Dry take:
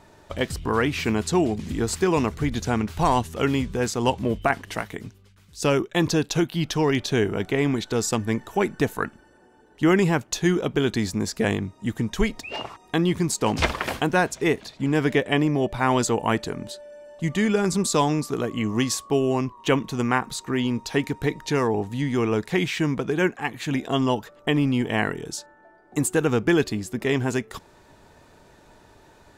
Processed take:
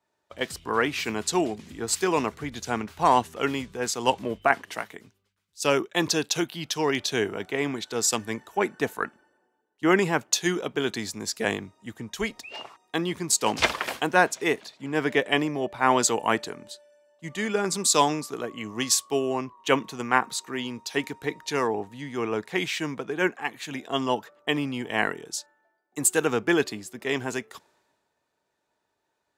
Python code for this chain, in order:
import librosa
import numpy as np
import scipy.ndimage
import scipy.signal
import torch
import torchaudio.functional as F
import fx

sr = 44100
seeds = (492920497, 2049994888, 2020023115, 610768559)

y = fx.highpass(x, sr, hz=470.0, slope=6)
y = fx.band_widen(y, sr, depth_pct=70)